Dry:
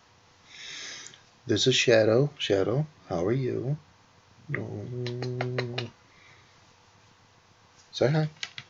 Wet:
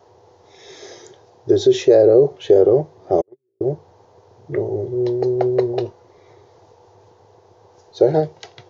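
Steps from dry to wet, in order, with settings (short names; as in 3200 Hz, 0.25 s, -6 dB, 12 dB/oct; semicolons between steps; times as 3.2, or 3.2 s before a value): fifteen-band EQ 100 Hz +11 dB, 400 Hz +8 dB, 2500 Hz -6 dB; 3.21–3.61 gate -13 dBFS, range -59 dB; limiter -13.5 dBFS, peak gain reduction 8.5 dB; band shelf 560 Hz +14 dB; gain -2.5 dB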